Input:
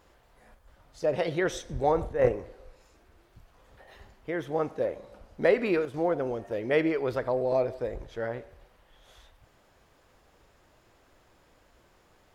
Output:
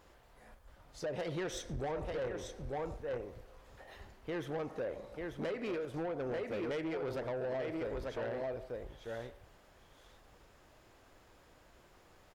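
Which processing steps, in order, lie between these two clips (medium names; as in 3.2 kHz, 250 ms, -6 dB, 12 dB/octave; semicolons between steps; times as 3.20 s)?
delay 891 ms -7.5 dB; compression 6:1, threshold -29 dBFS, peak gain reduction 12 dB; saturation -32 dBFS, distortion -11 dB; trim -1 dB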